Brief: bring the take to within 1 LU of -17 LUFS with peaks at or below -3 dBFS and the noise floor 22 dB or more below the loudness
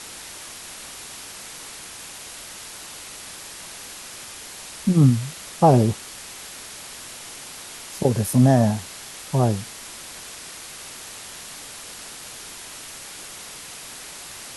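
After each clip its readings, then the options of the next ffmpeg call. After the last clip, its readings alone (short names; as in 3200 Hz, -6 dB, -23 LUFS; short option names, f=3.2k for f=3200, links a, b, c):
noise floor -39 dBFS; noise floor target -48 dBFS; loudness -26.0 LUFS; peak -4.0 dBFS; loudness target -17.0 LUFS
-> -af "afftdn=nr=9:nf=-39"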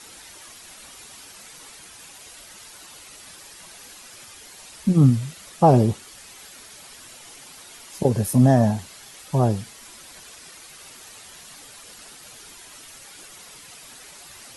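noise floor -45 dBFS; loudness -20.0 LUFS; peak -4.0 dBFS; loudness target -17.0 LUFS
-> -af "volume=3dB,alimiter=limit=-3dB:level=0:latency=1"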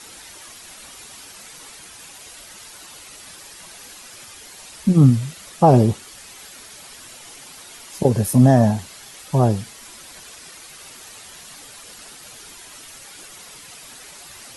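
loudness -17.5 LUFS; peak -3.0 dBFS; noise floor -42 dBFS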